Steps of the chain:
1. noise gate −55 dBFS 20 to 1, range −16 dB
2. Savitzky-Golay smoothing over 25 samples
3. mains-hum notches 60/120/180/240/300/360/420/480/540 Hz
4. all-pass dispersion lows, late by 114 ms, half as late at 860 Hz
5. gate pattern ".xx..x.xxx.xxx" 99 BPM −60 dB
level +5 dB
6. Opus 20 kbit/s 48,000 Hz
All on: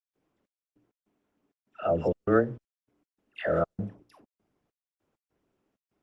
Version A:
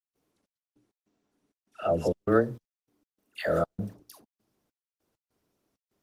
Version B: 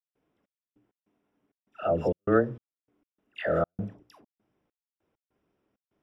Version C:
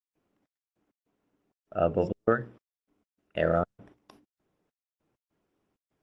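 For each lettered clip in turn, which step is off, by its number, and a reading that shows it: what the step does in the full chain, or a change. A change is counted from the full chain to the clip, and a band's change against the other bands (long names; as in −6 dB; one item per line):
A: 2, change in momentary loudness spread +1 LU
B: 6, change in momentary loudness spread +2 LU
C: 4, 250 Hz band −2.5 dB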